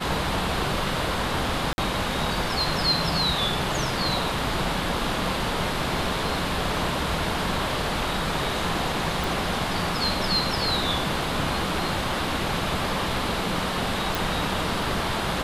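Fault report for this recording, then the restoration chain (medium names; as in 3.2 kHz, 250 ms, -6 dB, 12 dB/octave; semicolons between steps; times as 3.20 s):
1.73–1.78 s: dropout 51 ms
9.24 s: pop
14.15 s: pop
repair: de-click; interpolate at 1.73 s, 51 ms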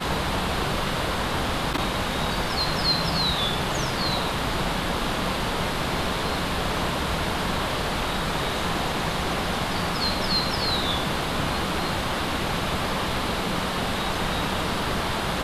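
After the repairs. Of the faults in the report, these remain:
nothing left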